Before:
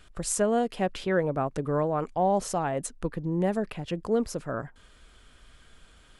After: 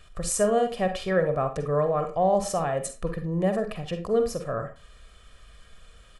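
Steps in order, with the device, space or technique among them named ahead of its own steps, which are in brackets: microphone above a desk (comb 1.7 ms, depth 55%; reverberation RT60 0.30 s, pre-delay 41 ms, DRR 6.5 dB)

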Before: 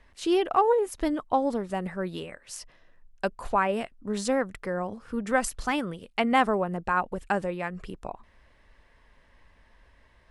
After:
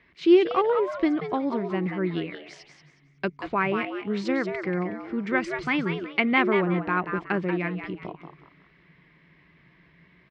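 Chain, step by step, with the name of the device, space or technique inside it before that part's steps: frequency-shifting delay pedal into a guitar cabinet (frequency-shifting echo 184 ms, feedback 30%, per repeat +130 Hz, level -8 dB; cabinet simulation 97–4500 Hz, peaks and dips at 170 Hz +8 dB, 350 Hz +9 dB, 550 Hz -6 dB, 830 Hz -7 dB, 2.2 kHz +9 dB)

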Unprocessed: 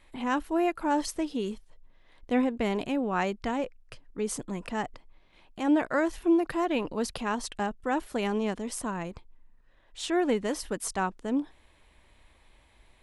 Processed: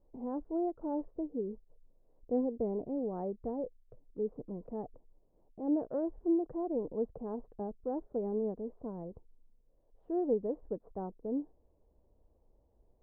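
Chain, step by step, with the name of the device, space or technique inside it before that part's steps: under water (low-pass 700 Hz 24 dB/octave; peaking EQ 460 Hz +7 dB 0.38 oct); trim -7.5 dB

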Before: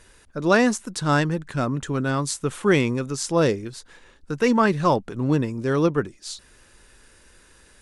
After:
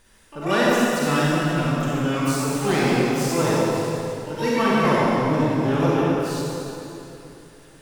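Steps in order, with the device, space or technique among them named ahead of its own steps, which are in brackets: shimmer-style reverb (harmony voices +12 st -7 dB; reverberation RT60 3.1 s, pre-delay 32 ms, DRR -7 dB); trim -7 dB

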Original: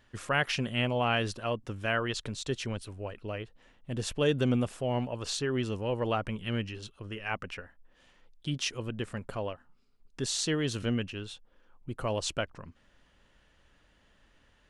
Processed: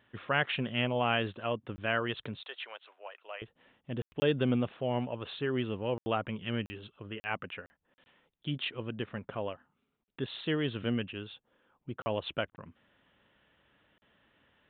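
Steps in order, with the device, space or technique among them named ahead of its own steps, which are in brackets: call with lost packets (high-pass 110 Hz 12 dB/octave; resampled via 8 kHz; lost packets bursts); 2.41–3.42 s: high-pass 650 Hz 24 dB/octave; trim -1 dB

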